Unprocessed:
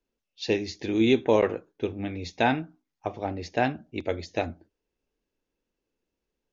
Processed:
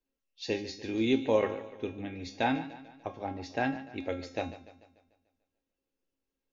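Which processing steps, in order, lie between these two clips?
feedback comb 270 Hz, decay 0.39 s, harmonics all, mix 80%; modulated delay 147 ms, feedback 50%, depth 55 cents, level -15 dB; trim +5.5 dB

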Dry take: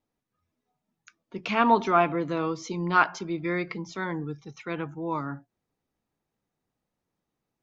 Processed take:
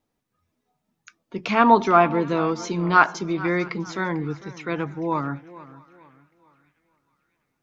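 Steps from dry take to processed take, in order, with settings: dynamic bell 2.9 kHz, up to -5 dB, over -44 dBFS, Q 2.5; on a send: band-passed feedback delay 653 ms, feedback 50%, band-pass 2.4 kHz, level -22.5 dB; on the sum: modulated delay 448 ms, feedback 34%, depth 81 cents, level -18 dB; trim +5.5 dB

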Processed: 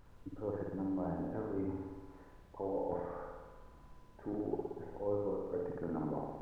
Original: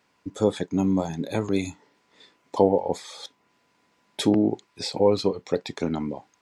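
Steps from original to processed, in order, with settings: steep low-pass 1.6 kHz 48 dB/octave; peaking EQ 210 Hz -8 dB 0.28 oct; reverse; compression 6:1, threshold -36 dBFS, peak gain reduction 21 dB; reverse; added noise brown -57 dBFS; flutter echo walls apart 10.1 m, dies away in 1.3 s; trim -2 dB

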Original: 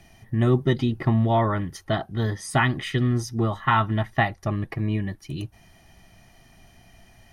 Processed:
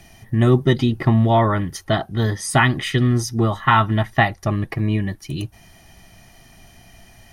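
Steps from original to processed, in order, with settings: treble shelf 4.5 kHz +5 dB; trim +5 dB

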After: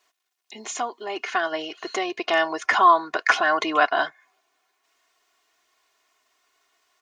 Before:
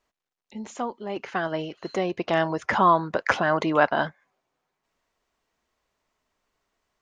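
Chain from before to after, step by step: comb 2.8 ms, depth 78%; in parallel at +2 dB: compression, threshold -33 dBFS, peak gain reduction 21 dB; on the sum: high-pass 1.4 kHz 6 dB/octave; trim +3.5 dB

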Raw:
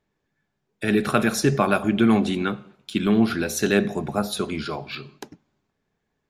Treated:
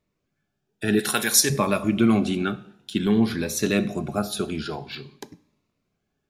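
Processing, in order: 0.99–1.50 s: tilt EQ +4 dB/octave; two-slope reverb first 0.57 s, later 2.5 s, from -25 dB, DRR 17 dB; Shepard-style phaser rising 0.53 Hz

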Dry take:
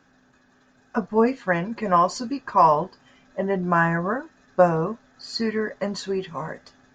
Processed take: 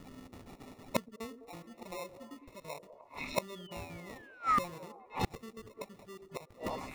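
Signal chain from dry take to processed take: random holes in the spectrogram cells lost 28%; in parallel at -2 dB: compression, threshold -29 dBFS, peak gain reduction 15.5 dB; on the sum: sample-and-hold 28×; painted sound fall, 3.48–5.06 s, 730–3700 Hz -31 dBFS; on a send: repeats whose band climbs or falls 102 ms, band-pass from 320 Hz, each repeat 0.7 oct, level -7 dB; on the sum: inverted gate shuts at -22 dBFS, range -30 dB; trim +4.5 dB

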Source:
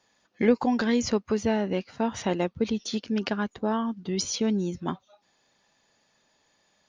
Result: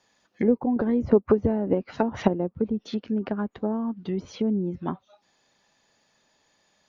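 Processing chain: low-pass that closes with the level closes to 560 Hz, closed at -22.5 dBFS; 0.76–2.28 s: harmonic-percussive split percussive +9 dB; trim +1 dB

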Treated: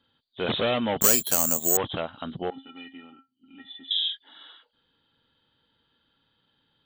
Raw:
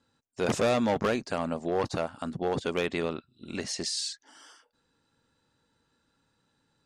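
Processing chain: knee-point frequency compression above 2.9 kHz 4:1; treble shelf 2.1 kHz +7 dB; 1.01–1.77 s: careless resampling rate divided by 6×, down filtered, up zero stuff; 2.50–3.91 s: feedback comb 270 Hz, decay 0.17 s, harmonics odd, mix 100%; trim -1 dB

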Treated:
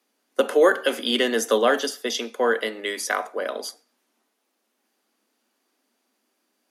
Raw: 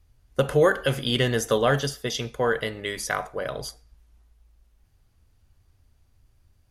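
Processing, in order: steep high-pass 220 Hz 72 dB/octave; trim +2.5 dB

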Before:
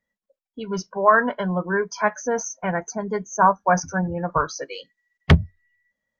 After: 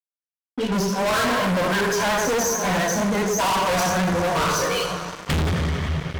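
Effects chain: two-slope reverb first 0.59 s, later 4 s, from -18 dB, DRR -6 dB; fuzz box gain 28 dB, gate -37 dBFS; vibrato 11 Hz 43 cents; trim -6.5 dB

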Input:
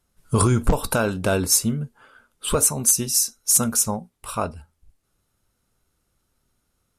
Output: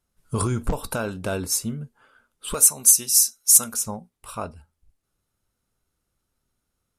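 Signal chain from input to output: 2.54–3.74 s: tilt EQ +3 dB/octave; trim -6 dB

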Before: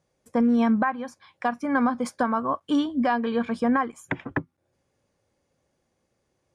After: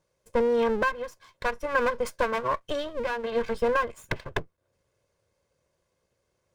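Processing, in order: comb filter that takes the minimum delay 1.9 ms; 2.71–3.29 s: compression, threshold -26 dBFS, peak gain reduction 6 dB

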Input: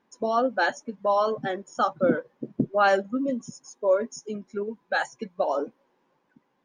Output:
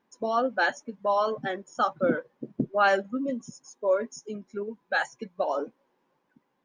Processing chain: dynamic bell 2.1 kHz, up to +4 dB, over -37 dBFS, Q 0.77; trim -3 dB

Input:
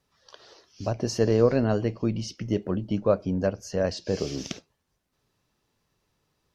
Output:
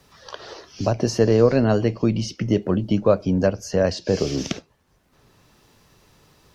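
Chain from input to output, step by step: three bands compressed up and down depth 40%; trim +6 dB

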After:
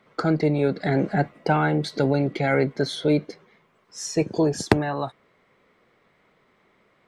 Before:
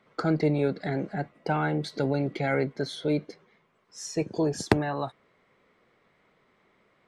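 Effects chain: gain riding 0.5 s; trim +5.5 dB

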